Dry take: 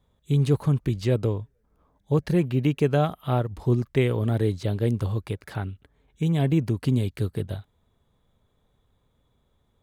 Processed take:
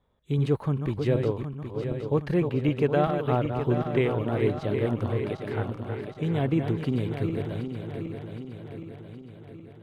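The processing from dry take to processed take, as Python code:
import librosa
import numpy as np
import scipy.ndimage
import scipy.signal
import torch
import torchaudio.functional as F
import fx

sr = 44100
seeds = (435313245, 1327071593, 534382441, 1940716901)

y = fx.reverse_delay_fb(x, sr, ms=384, feedback_pct=74, wet_db=-6.5)
y = fx.bass_treble(y, sr, bass_db=-6, treble_db=-14)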